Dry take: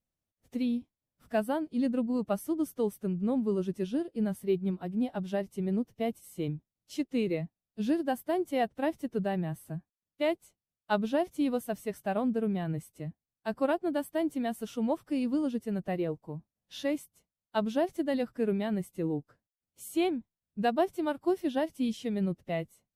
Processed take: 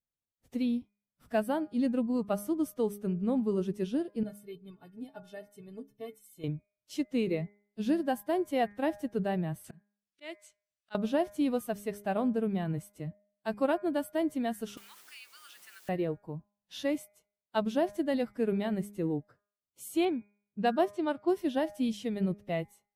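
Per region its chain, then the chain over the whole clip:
4.23–6.44 high shelf 7500 Hz +6.5 dB + metallic resonator 130 Hz, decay 0.23 s, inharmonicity 0.03
9.64–10.95 band shelf 3600 Hz +10 dB 2.9 oct + auto swell 0.538 s
14.77–15.89 steep high-pass 1300 Hz 48 dB/oct + requantised 10-bit, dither triangular + three-band squash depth 70%
20.05–21.35 low-pass opened by the level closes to 1700 Hz, open at -22.5 dBFS + HPF 74 Hz
whole clip: spectral noise reduction 10 dB; de-hum 204.5 Hz, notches 12

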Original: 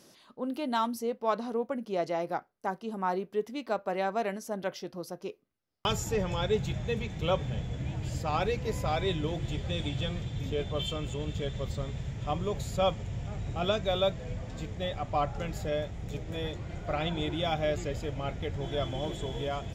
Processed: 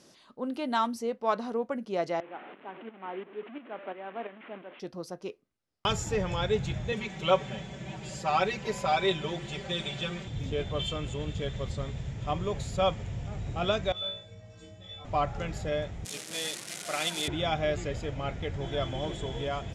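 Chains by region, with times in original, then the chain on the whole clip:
2.2–4.8 delta modulation 16 kbps, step -32 dBFS + tremolo saw up 2.9 Hz, depth 65% + ladder high-pass 210 Hz, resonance 35%
6.92–10.28 HPF 300 Hz 6 dB/oct + comb 5.2 ms, depth 100%
13.92–15.05 metallic resonator 95 Hz, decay 0.59 s, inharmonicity 0.03 + flutter echo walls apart 3 m, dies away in 0.46 s
16.05–17.28 switching spikes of -26.5 dBFS + HPF 180 Hz 24 dB/oct + tilt shelf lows -5.5 dB, about 1400 Hz
whole clip: LPF 10000 Hz 24 dB/oct; dynamic EQ 1700 Hz, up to +3 dB, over -46 dBFS, Q 0.85

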